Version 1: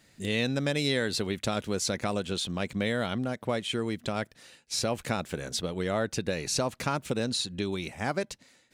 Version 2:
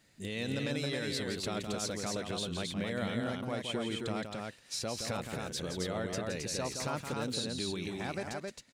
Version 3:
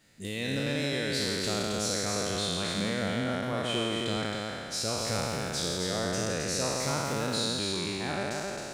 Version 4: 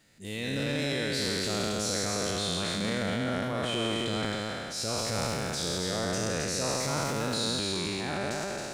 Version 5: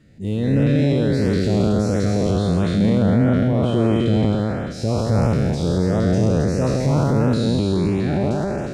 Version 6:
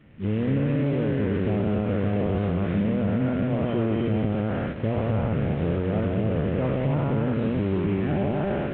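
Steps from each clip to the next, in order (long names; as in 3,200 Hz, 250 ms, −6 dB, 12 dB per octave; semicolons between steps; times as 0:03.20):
brickwall limiter −21.5 dBFS, peak gain reduction 6.5 dB; on a send: loudspeakers that aren't time-aligned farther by 58 metres −7 dB, 92 metres −3 dB; on the sum: level −5.5 dB
peak hold with a decay on every bin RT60 2.43 s; level +1 dB
transient designer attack −6 dB, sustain +9 dB
high-pass filter 110 Hz 6 dB per octave; spectral tilt −4.5 dB per octave; auto-filter notch saw up 1.5 Hz 750–4,700 Hz; level +7 dB
variable-slope delta modulation 16 kbit/s; downward compressor, threshold −20 dBFS, peak gain reduction 7.5 dB; mains-hum notches 60/120/180 Hz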